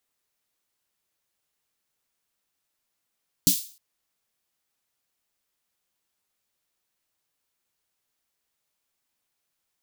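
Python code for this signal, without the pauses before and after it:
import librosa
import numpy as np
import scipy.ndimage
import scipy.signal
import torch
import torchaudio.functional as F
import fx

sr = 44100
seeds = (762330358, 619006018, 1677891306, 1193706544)

y = fx.drum_snare(sr, seeds[0], length_s=0.31, hz=180.0, second_hz=280.0, noise_db=3.0, noise_from_hz=3700.0, decay_s=0.13, noise_decay_s=0.41)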